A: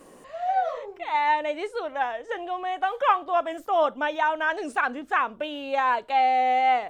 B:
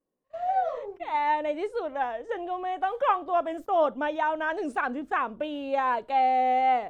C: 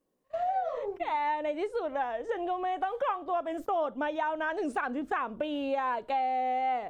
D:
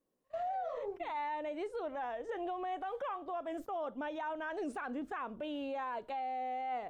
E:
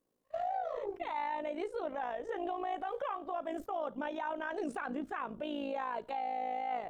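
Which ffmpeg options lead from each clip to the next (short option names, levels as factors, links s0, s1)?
-af "agate=range=0.0178:threshold=0.00794:ratio=16:detection=peak,tiltshelf=f=800:g=5.5,volume=0.794"
-af "acompressor=threshold=0.0178:ratio=4,volume=1.88"
-af "alimiter=level_in=1.41:limit=0.0631:level=0:latency=1:release=14,volume=0.708,volume=0.562"
-af "tremolo=f=55:d=0.667,volume=1.68"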